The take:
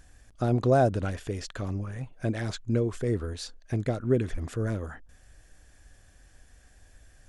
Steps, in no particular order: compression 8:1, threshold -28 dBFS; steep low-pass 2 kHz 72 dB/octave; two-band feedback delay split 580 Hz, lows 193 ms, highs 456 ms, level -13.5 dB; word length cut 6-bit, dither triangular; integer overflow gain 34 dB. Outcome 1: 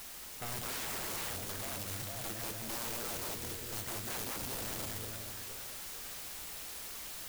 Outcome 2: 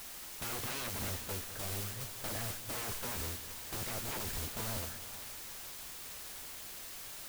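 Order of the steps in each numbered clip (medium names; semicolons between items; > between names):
steep low-pass > word length cut > two-band feedback delay > integer overflow > compression; steep low-pass > word length cut > compression > integer overflow > two-band feedback delay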